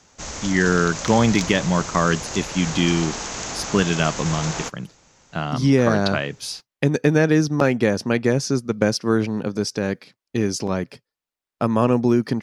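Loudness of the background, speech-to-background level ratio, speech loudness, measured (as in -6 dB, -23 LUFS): -29.0 LUFS, 8.0 dB, -21.0 LUFS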